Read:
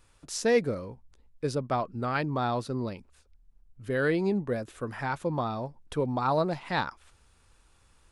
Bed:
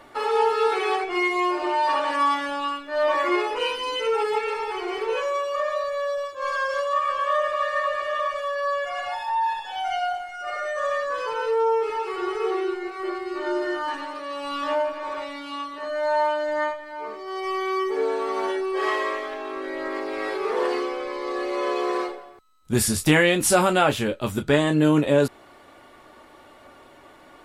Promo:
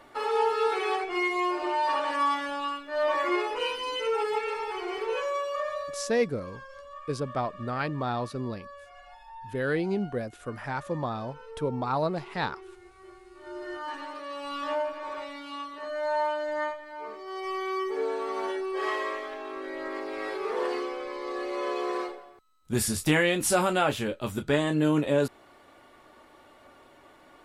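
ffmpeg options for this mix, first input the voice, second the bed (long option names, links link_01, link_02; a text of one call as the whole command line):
ffmpeg -i stem1.wav -i stem2.wav -filter_complex "[0:a]adelay=5650,volume=-1.5dB[link_01];[1:a]volume=11dB,afade=type=out:start_time=5.49:duration=0.82:silence=0.149624,afade=type=in:start_time=13.38:duration=0.7:silence=0.16788[link_02];[link_01][link_02]amix=inputs=2:normalize=0" out.wav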